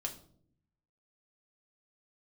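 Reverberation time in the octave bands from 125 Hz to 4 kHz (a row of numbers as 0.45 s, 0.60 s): 1.2 s, 1.0 s, 0.75 s, 0.50 s, 0.35 s, 0.40 s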